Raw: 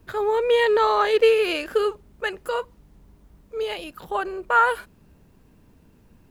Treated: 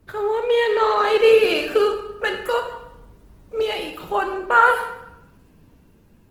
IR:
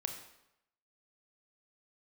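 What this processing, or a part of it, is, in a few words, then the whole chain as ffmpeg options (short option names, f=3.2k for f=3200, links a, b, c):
speakerphone in a meeting room: -filter_complex "[1:a]atrim=start_sample=2205[a];[0:a][a]afir=irnorm=-1:irlink=0,dynaudnorm=f=350:g=7:m=6dB" -ar 48000 -c:a libopus -b:a 16k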